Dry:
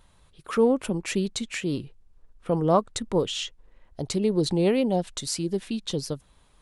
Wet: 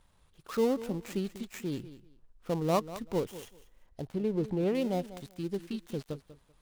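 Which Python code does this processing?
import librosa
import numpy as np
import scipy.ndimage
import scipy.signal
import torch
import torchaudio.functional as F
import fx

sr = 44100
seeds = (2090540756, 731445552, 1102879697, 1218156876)

y = fx.dead_time(x, sr, dead_ms=0.13)
y = fx.high_shelf(y, sr, hz=2800.0, db=-11.5, at=(4.07, 4.75))
y = fx.echo_feedback(y, sr, ms=193, feedback_pct=19, wet_db=-15.0)
y = y * librosa.db_to_amplitude(-7.0)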